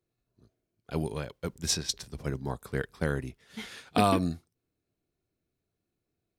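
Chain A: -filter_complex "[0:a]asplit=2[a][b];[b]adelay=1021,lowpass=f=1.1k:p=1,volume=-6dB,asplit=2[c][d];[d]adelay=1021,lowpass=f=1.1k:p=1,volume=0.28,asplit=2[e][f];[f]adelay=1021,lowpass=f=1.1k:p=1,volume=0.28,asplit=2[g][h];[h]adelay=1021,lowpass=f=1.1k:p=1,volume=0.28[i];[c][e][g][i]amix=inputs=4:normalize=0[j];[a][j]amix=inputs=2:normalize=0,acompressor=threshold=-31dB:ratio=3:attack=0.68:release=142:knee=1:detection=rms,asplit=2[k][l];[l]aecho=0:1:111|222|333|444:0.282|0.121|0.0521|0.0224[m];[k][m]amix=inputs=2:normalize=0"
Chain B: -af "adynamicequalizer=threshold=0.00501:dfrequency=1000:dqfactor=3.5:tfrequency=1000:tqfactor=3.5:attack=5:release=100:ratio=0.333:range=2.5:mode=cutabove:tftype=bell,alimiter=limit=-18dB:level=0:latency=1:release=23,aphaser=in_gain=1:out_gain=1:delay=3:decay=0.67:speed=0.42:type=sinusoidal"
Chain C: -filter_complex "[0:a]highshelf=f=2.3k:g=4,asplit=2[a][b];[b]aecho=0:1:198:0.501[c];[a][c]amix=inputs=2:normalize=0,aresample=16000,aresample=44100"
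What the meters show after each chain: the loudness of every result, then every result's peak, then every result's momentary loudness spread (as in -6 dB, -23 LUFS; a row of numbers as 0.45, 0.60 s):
-39.5, -31.0, -30.0 LUFS; -22.0, -9.5, -8.0 dBFS; 11, 13, 13 LU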